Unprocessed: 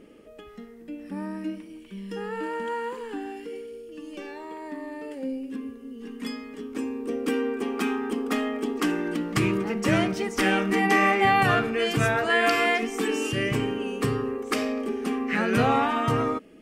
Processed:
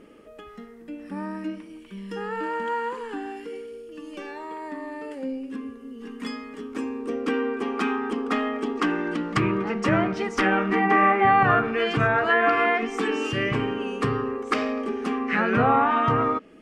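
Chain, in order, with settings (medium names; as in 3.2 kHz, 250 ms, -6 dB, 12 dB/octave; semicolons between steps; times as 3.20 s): low-pass that closes with the level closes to 1.8 kHz, closed at -18 dBFS; peaking EQ 1.2 kHz +6 dB 1.2 oct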